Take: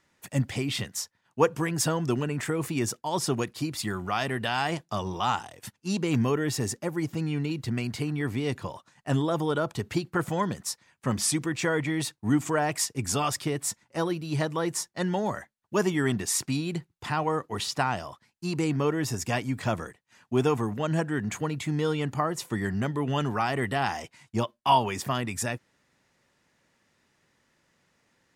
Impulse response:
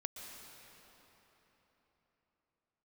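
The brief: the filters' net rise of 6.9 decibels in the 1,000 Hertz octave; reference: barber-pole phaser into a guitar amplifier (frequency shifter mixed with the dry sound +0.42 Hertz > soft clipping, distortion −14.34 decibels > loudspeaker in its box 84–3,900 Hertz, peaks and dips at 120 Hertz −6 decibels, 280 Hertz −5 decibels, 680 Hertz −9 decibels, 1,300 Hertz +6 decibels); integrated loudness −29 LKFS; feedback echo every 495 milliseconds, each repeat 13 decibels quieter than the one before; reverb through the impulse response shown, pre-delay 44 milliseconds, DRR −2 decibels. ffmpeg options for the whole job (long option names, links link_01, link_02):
-filter_complex "[0:a]equalizer=frequency=1000:width_type=o:gain=8,aecho=1:1:495|990|1485:0.224|0.0493|0.0108,asplit=2[link_01][link_02];[1:a]atrim=start_sample=2205,adelay=44[link_03];[link_02][link_03]afir=irnorm=-1:irlink=0,volume=3.5dB[link_04];[link_01][link_04]amix=inputs=2:normalize=0,asplit=2[link_05][link_06];[link_06]afreqshift=0.42[link_07];[link_05][link_07]amix=inputs=2:normalize=1,asoftclip=threshold=-11.5dB,highpass=84,equalizer=frequency=120:width_type=q:width=4:gain=-6,equalizer=frequency=280:width_type=q:width=4:gain=-5,equalizer=frequency=680:width_type=q:width=4:gain=-9,equalizer=frequency=1300:width_type=q:width=4:gain=6,lowpass=frequency=3900:width=0.5412,lowpass=frequency=3900:width=1.3066,volume=-3dB"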